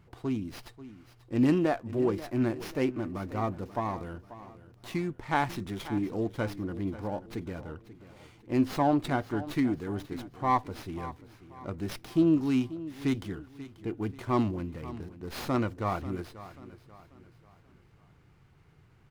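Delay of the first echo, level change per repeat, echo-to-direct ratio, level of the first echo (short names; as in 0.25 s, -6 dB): 0.537 s, -8.0 dB, -14.5 dB, -15.5 dB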